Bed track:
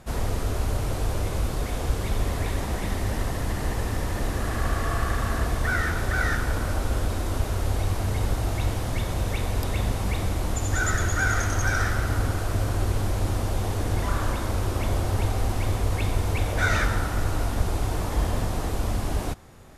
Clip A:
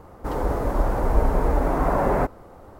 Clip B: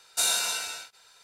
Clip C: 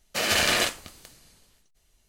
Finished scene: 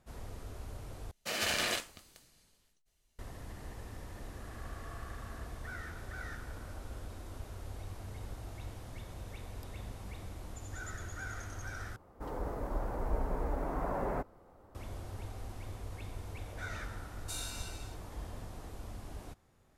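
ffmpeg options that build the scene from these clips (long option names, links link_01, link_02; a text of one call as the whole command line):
ffmpeg -i bed.wav -i cue0.wav -i cue1.wav -i cue2.wav -filter_complex "[0:a]volume=-19dB,asplit=3[link_01][link_02][link_03];[link_01]atrim=end=1.114[link_04];[3:a]atrim=end=2.08,asetpts=PTS-STARTPTS,volume=-10dB[link_05];[link_02]atrim=start=3.186:end=11.964[link_06];[1:a]atrim=end=2.79,asetpts=PTS-STARTPTS,volume=-14dB[link_07];[link_03]atrim=start=14.746[link_08];[2:a]atrim=end=1.23,asetpts=PTS-STARTPTS,volume=-17dB,afade=type=in:duration=0.004:curve=hsin,afade=type=out:start_time=1.226:duration=0.004:curve=hsin,adelay=17110[link_09];[link_04][link_05]acrossfade=duration=0.004:curve1=hsin:curve2=hsin[link_10];[link_10][link_06]acrossfade=duration=0.004:curve1=hsin:curve2=hsin[link_11];[link_11][link_07]acrossfade=duration=0.004:curve1=hsin:curve2=hsin[link_12];[link_12][link_08]acrossfade=duration=0.004:curve1=hsin:curve2=hsin[link_13];[link_13][link_09]amix=inputs=2:normalize=0" out.wav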